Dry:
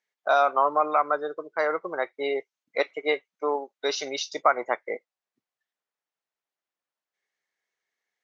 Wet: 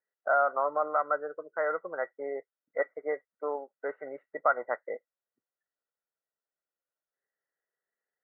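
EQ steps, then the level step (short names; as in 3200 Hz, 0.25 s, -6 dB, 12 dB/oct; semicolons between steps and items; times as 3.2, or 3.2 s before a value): rippled Chebyshev low-pass 2000 Hz, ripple 9 dB; dynamic EQ 380 Hz, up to -7 dB, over -44 dBFS, Q 1.9; 0.0 dB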